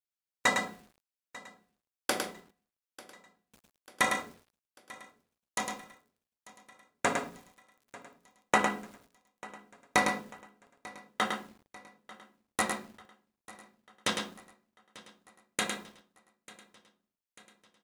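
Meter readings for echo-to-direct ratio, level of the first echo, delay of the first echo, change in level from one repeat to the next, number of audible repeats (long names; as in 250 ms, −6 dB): −5.0 dB, −5.5 dB, 106 ms, repeats not evenly spaced, 6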